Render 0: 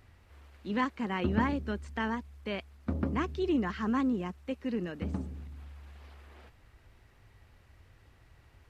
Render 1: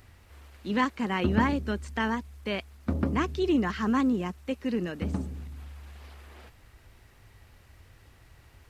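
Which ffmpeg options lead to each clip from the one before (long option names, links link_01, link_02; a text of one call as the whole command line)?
ffmpeg -i in.wav -af "highshelf=frequency=5200:gain=8,volume=4dB" out.wav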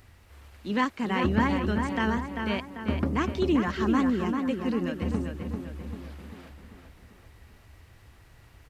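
ffmpeg -i in.wav -filter_complex "[0:a]asplit=2[link_01][link_02];[link_02]adelay=393,lowpass=frequency=3400:poles=1,volume=-5dB,asplit=2[link_03][link_04];[link_04]adelay=393,lowpass=frequency=3400:poles=1,volume=0.52,asplit=2[link_05][link_06];[link_06]adelay=393,lowpass=frequency=3400:poles=1,volume=0.52,asplit=2[link_07][link_08];[link_08]adelay=393,lowpass=frequency=3400:poles=1,volume=0.52,asplit=2[link_09][link_10];[link_10]adelay=393,lowpass=frequency=3400:poles=1,volume=0.52,asplit=2[link_11][link_12];[link_12]adelay=393,lowpass=frequency=3400:poles=1,volume=0.52,asplit=2[link_13][link_14];[link_14]adelay=393,lowpass=frequency=3400:poles=1,volume=0.52[link_15];[link_01][link_03][link_05][link_07][link_09][link_11][link_13][link_15]amix=inputs=8:normalize=0" out.wav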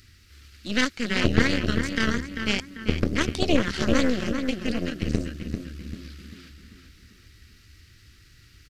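ffmpeg -i in.wav -af "firequalizer=gain_entry='entry(330,0);entry(620,-19);entry(940,-21);entry(1300,0);entry(3300,6);entry(4700,12);entry(9000,2)':delay=0.05:min_phase=1,aeval=exprs='0.668*(cos(1*acos(clip(val(0)/0.668,-1,1)))-cos(1*PI/2))+0.188*(cos(8*acos(clip(val(0)/0.668,-1,1)))-cos(8*PI/2))':channel_layout=same" out.wav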